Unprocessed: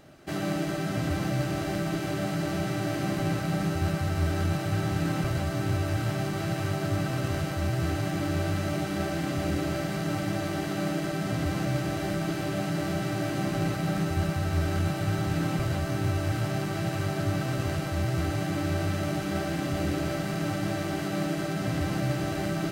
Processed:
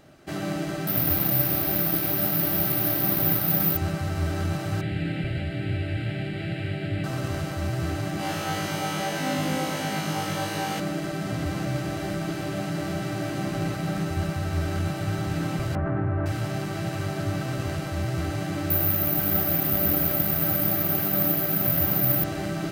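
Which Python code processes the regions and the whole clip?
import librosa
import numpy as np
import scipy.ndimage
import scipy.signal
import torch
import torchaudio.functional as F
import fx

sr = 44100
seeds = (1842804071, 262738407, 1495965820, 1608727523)

y = fx.chain(x, sr, fx.delta_mod(bps=32000, step_db=-31.0),
    fx.resample_bad(factor=3, down='none', up='zero_stuff'), at=(0.87, 3.77))
y = fx.chain(y, sr, fx.lowpass(hz=6300.0, slope=12),
    fx.peak_eq(hz=2200.0, db=4.5, octaves=1.2),
    fx.fixed_phaser(hz=2600.0, stages=4), at=(4.81, 7.04))
y = fx.chain(y, sr, fx.highpass(hz=170.0, slope=12),
    fx.room_flutter(wall_m=3.3, rt60_s=1.0), at=(8.17, 10.8))
y = fx.chain(y, sr, fx.lowpass(hz=1700.0, slope=24),
    fx.env_flatten(amount_pct=70), at=(15.75, 16.26))
y = fx.chain(y, sr, fx.echo_single(ms=482, db=-6.5),
    fx.resample_bad(factor=3, down='filtered', up='zero_stuff'), at=(18.7, 22.24))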